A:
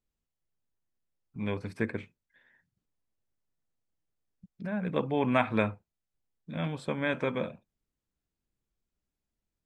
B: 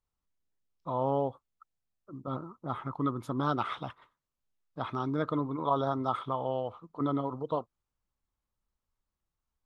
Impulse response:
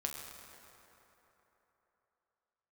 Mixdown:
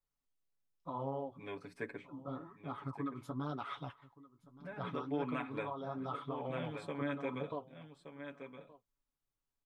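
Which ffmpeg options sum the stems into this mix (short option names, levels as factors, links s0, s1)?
-filter_complex "[0:a]highpass=190,aecho=1:1:7.1:0.89,volume=0.266,asplit=2[s0][s1];[s1]volume=0.299[s2];[1:a]aecho=1:1:7.1:0.57,acompressor=threshold=0.0398:ratio=6,flanger=delay=3.4:depth=9.7:regen=-38:speed=1.1:shape=triangular,volume=0.631,asplit=2[s3][s4];[s4]volume=0.1[s5];[s2][s5]amix=inputs=2:normalize=0,aecho=0:1:1172:1[s6];[s0][s3][s6]amix=inputs=3:normalize=0,alimiter=level_in=1.33:limit=0.0631:level=0:latency=1:release=308,volume=0.75"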